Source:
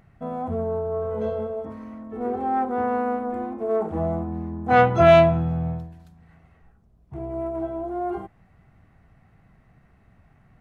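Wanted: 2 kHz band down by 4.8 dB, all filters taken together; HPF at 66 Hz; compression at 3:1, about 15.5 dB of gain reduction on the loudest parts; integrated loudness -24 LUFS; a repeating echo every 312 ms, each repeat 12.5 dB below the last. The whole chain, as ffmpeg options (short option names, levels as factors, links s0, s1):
-af "highpass=66,equalizer=f=2000:t=o:g=-7,acompressor=threshold=0.0251:ratio=3,aecho=1:1:312|624|936:0.237|0.0569|0.0137,volume=2.99"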